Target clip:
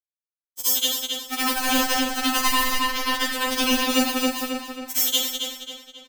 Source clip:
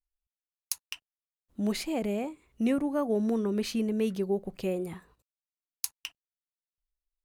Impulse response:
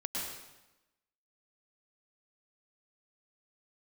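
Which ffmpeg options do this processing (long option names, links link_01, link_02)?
-filter_complex "[0:a]aeval=exprs='val(0)+0.5*0.0224*sgn(val(0))':channel_layout=same,equalizer=frequency=1500:width_type=o:width=2.5:gain=-3,bandreject=frequency=820:width=12,acrossover=split=160[link_01][link_02];[link_01]aeval=exprs='(mod(106*val(0)+1,2)-1)/106':channel_layout=same[link_03];[link_02]acompressor=threshold=-36dB:ratio=8[link_04];[link_03][link_04]amix=inputs=2:normalize=0,asetrate=52479,aresample=44100,acrusher=bits=4:mix=0:aa=0.000001,asplit=2[link_05][link_06];[link_06]adelay=270,lowpass=frequency=5000:poles=1,volume=-5.5dB,asplit=2[link_07][link_08];[link_08]adelay=270,lowpass=frequency=5000:poles=1,volume=0.5,asplit=2[link_09][link_10];[link_10]adelay=270,lowpass=frequency=5000:poles=1,volume=0.5,asplit=2[link_11][link_12];[link_12]adelay=270,lowpass=frequency=5000:poles=1,volume=0.5,asplit=2[link_13][link_14];[link_14]adelay=270,lowpass=frequency=5000:poles=1,volume=0.5,asplit=2[link_15][link_16];[link_16]adelay=270,lowpass=frequency=5000:poles=1,volume=0.5[link_17];[link_05][link_07][link_09][link_11][link_13][link_15][link_17]amix=inputs=7:normalize=0[link_18];[1:a]atrim=start_sample=2205,afade=type=out:start_time=0.37:duration=0.01,atrim=end_sample=16758,asetrate=70560,aresample=44100[link_19];[link_18][link_19]afir=irnorm=-1:irlink=0,alimiter=level_in=35dB:limit=-1dB:release=50:level=0:latency=1,afftfilt=real='re*3.46*eq(mod(b,12),0)':imag='im*3.46*eq(mod(b,12),0)':win_size=2048:overlap=0.75,volume=-4dB"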